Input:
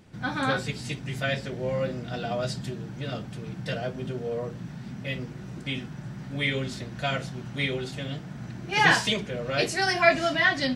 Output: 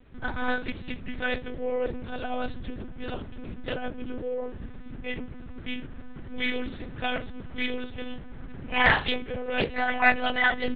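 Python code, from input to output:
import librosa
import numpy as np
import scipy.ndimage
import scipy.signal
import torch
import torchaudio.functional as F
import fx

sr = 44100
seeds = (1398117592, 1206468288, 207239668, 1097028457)

y = fx.air_absorb(x, sr, metres=81.0)
y = fx.lpc_monotone(y, sr, seeds[0], pitch_hz=250.0, order=10)
y = fx.doppler_dist(y, sr, depth_ms=0.32)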